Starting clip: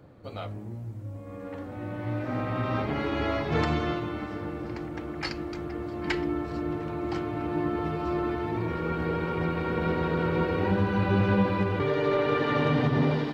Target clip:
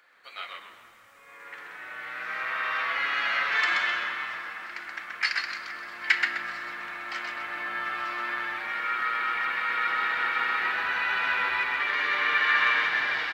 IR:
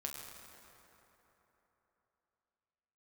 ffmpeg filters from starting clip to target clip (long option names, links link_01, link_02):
-filter_complex "[0:a]highpass=frequency=1800:width_type=q:width=2.5,asplit=5[link_01][link_02][link_03][link_04][link_05];[link_02]adelay=128,afreqshift=-120,volume=-3.5dB[link_06];[link_03]adelay=256,afreqshift=-240,volume=-13.4dB[link_07];[link_04]adelay=384,afreqshift=-360,volume=-23.3dB[link_08];[link_05]adelay=512,afreqshift=-480,volume=-33.2dB[link_09];[link_01][link_06][link_07][link_08][link_09]amix=inputs=5:normalize=0,asplit=2[link_10][link_11];[1:a]atrim=start_sample=2205[link_12];[link_11][link_12]afir=irnorm=-1:irlink=0,volume=-2.5dB[link_13];[link_10][link_13]amix=inputs=2:normalize=0"